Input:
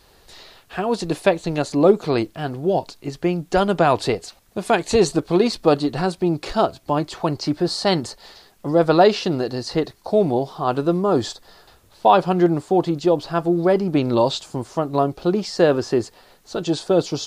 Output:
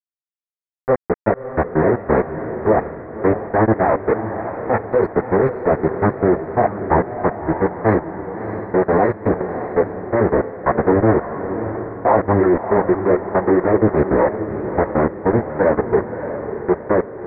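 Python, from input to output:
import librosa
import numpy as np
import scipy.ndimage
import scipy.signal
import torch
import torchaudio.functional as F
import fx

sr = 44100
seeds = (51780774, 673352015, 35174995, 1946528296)

p1 = fx.cheby_harmonics(x, sr, harmonics=(2, 5, 7, 8), levels_db=(-33, -31, -23, -19), full_scale_db=-1.5)
p2 = scipy.signal.sosfilt(scipy.signal.butter(2, 160.0, 'highpass', fs=sr, output='sos'), p1)
p3 = fx.peak_eq(p2, sr, hz=1400.0, db=-7.0, octaves=0.7)
p4 = fx.level_steps(p3, sr, step_db=23)
p5 = fx.doubler(p4, sr, ms=15.0, db=-6.0)
p6 = fx.leveller(p5, sr, passes=1)
p7 = fx.pitch_keep_formants(p6, sr, semitones=-10.5)
p8 = np.where(np.abs(p7) >= 10.0 ** (-24.5 / 20.0), p7, 0.0)
p9 = scipy.signal.sosfilt(scipy.signal.ellip(4, 1.0, 40, 1900.0, 'lowpass', fs=sr, output='sos'), p8)
p10 = p9 + fx.echo_diffused(p9, sr, ms=618, feedback_pct=47, wet_db=-9.0, dry=0)
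y = F.gain(torch.from_numpy(p10), 7.0).numpy()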